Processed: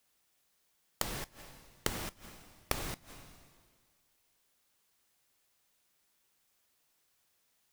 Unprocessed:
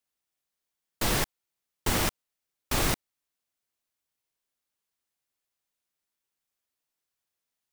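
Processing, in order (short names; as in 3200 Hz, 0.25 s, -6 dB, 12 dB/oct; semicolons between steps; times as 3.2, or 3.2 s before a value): two-slope reverb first 0.36 s, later 1.7 s, from -19 dB, DRR 17 dB; flipped gate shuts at -27 dBFS, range -25 dB; gain +11 dB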